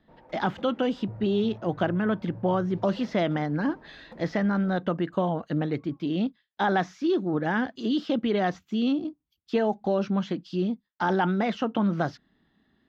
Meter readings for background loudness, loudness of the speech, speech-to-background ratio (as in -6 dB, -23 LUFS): -47.0 LUFS, -27.5 LUFS, 19.5 dB